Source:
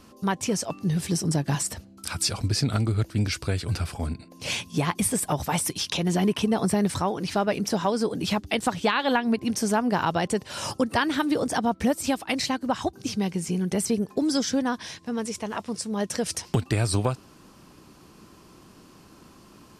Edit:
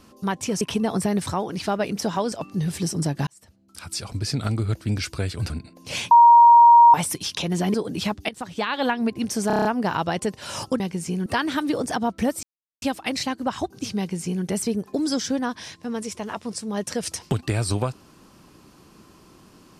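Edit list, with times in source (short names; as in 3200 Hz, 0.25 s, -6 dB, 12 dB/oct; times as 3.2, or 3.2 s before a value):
1.56–2.83 fade in
3.79–4.05 cut
4.66–5.49 bleep 942 Hz -7.5 dBFS
6.29–8 move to 0.61
8.55–9.08 fade in, from -15 dB
9.73 stutter 0.03 s, 7 plays
12.05 insert silence 0.39 s
13.21–13.67 copy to 10.88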